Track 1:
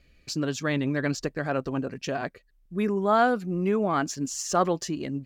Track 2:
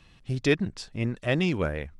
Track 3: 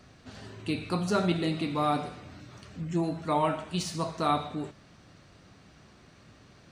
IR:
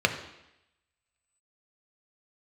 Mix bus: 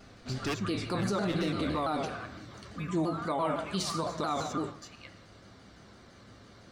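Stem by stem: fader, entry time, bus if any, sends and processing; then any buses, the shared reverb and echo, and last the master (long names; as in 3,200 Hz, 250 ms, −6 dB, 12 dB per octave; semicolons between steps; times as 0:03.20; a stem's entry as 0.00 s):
−13.0 dB, 0.00 s, send −7.5 dB, high-pass filter 870 Hz 24 dB per octave; parametric band 1,200 Hz +13.5 dB 0.21 octaves; downward compressor, threshold −34 dBFS, peak gain reduction 19.5 dB
−7.0 dB, 0.00 s, no send, wave folding −19 dBFS
+0.5 dB, 0.00 s, send −20.5 dB, pitch modulation by a square or saw wave saw down 5.9 Hz, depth 160 cents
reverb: on, RT60 0.85 s, pre-delay 3 ms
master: brickwall limiter −22 dBFS, peak gain reduction 11 dB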